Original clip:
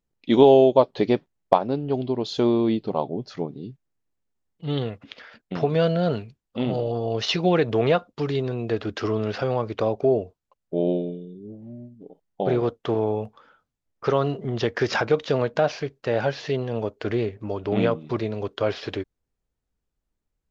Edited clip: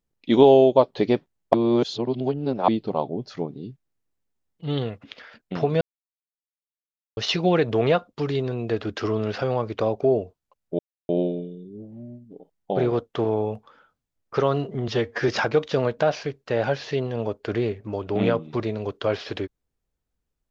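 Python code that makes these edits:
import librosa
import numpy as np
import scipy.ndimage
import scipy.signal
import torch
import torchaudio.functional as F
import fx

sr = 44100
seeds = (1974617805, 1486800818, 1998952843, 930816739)

y = fx.edit(x, sr, fx.reverse_span(start_s=1.54, length_s=1.14),
    fx.silence(start_s=5.81, length_s=1.36),
    fx.insert_silence(at_s=10.79, length_s=0.3),
    fx.stretch_span(start_s=14.58, length_s=0.27, factor=1.5), tone=tone)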